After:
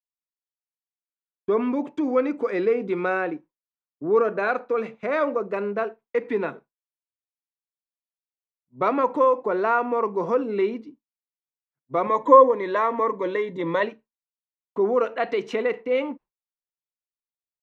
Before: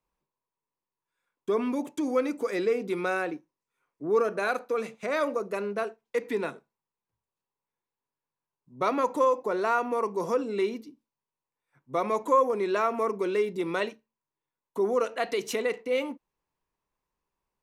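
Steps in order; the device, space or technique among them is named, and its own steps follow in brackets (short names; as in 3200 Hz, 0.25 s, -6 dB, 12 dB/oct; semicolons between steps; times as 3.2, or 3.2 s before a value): hearing-loss simulation (LPF 2400 Hz 12 dB/oct; expander -45 dBFS); 12.06–13.83 ripple EQ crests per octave 1.1, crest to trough 12 dB; gain +4.5 dB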